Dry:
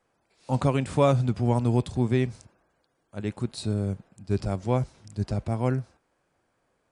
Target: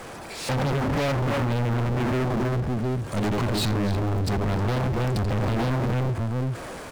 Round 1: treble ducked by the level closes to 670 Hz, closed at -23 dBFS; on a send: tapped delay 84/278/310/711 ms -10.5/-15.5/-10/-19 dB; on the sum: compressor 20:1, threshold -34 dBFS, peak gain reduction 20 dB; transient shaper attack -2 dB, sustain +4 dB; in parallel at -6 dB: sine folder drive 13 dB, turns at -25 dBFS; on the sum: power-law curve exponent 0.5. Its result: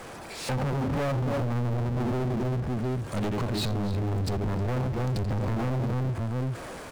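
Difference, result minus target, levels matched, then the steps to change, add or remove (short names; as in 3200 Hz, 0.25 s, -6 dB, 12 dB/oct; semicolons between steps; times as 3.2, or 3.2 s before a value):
compressor: peak gain reduction +7 dB
change: compressor 20:1, threshold -26.5 dBFS, peak gain reduction 13 dB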